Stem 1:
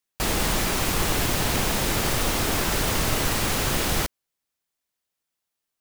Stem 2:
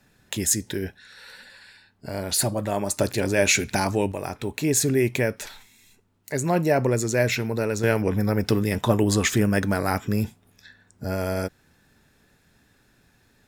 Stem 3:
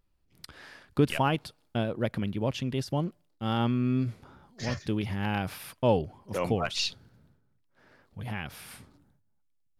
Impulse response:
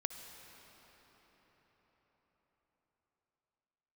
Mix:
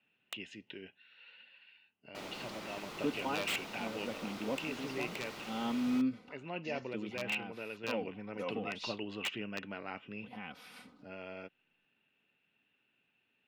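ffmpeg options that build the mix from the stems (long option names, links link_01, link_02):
-filter_complex "[0:a]adelay=1950,volume=-19dB[link_01];[1:a]lowpass=frequency=2800:width_type=q:width=13,aeval=exprs='(mod(2*val(0)+1,2)-1)/2':channel_layout=same,volume=-19.5dB,asplit=2[link_02][link_03];[2:a]aecho=1:1:4:0.66,adelay=2050,volume=-1.5dB[link_04];[link_03]apad=whole_len=522625[link_05];[link_04][link_05]sidechaincompress=threshold=-47dB:ratio=6:attack=25:release=1110[link_06];[link_01][link_02][link_06]amix=inputs=3:normalize=0,acrossover=split=150 5200:gain=0.0794 1 0.2[link_07][link_08][link_09];[link_07][link_08][link_09]amix=inputs=3:normalize=0,bandreject=frequency=1700:width=11"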